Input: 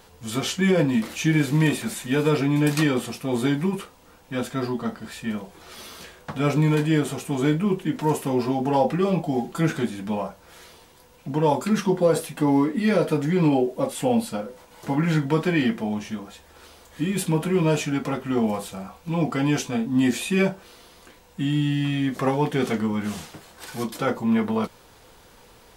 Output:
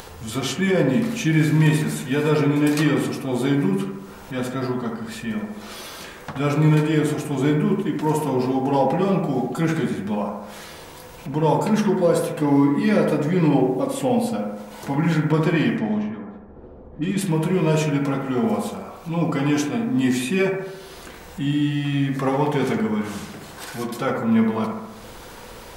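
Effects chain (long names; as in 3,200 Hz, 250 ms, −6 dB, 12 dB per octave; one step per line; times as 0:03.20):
0:15.32–0:17.21: low-pass that shuts in the quiet parts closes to 300 Hz, open at −19 dBFS
upward compression, threshold −30 dBFS
bucket-brigade delay 71 ms, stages 1,024, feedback 62%, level −4 dB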